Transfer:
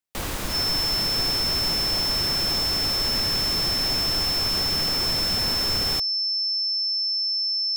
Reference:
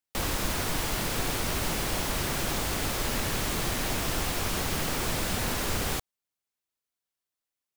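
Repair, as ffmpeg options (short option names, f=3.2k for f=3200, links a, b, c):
-af "bandreject=f=5.3k:w=30"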